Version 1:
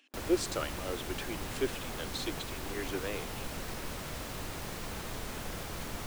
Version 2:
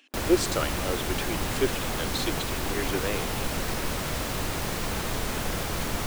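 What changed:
speech +6.5 dB; background +10.0 dB

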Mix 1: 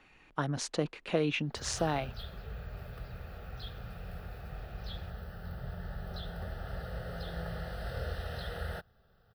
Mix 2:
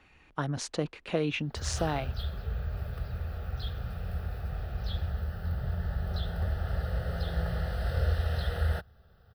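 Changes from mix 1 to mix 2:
background +3.5 dB; master: add bell 74 Hz +10 dB 0.88 oct

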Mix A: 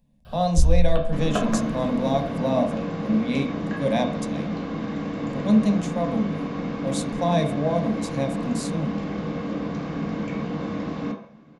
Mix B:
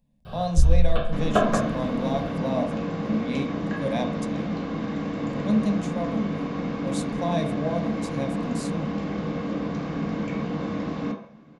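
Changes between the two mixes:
speech -4.5 dB; first sound: send +7.0 dB

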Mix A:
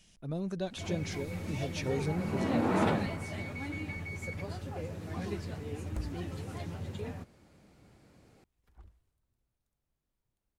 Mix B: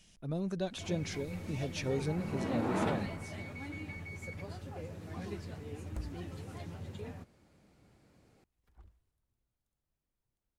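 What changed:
first sound -4.5 dB; second sound -3.0 dB

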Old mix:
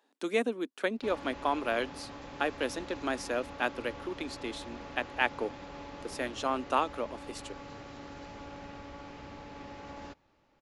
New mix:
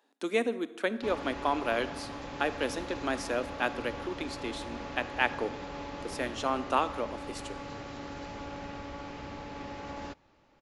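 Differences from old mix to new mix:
background +4.5 dB; reverb: on, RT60 1.1 s

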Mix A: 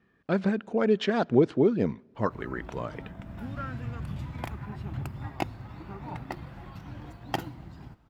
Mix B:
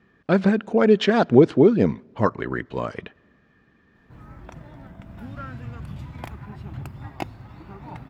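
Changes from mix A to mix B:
speech +7.5 dB; background: entry +1.80 s

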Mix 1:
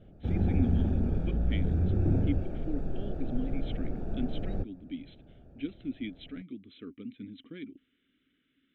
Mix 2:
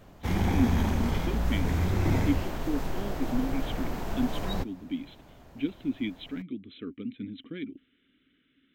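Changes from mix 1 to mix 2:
speech +5.5 dB; background: remove running mean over 43 samples

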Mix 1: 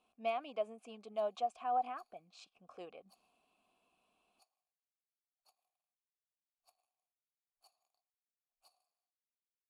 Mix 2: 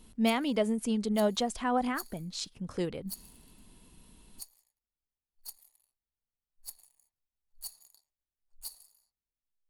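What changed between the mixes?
speech: add ten-band EQ 125 Hz +5 dB, 2000 Hz -3 dB, 8000 Hz -6 dB; master: remove vowel filter a

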